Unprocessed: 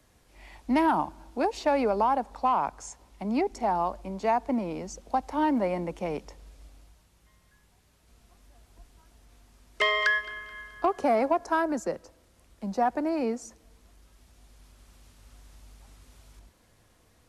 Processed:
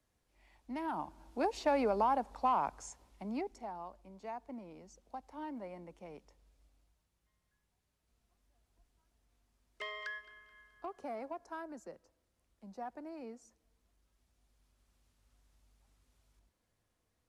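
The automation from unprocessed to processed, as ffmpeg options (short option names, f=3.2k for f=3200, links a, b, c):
-af "volume=-6dB,afade=t=in:st=0.8:d=0.69:silence=0.281838,afade=t=out:st=2.79:d=0.93:silence=0.237137"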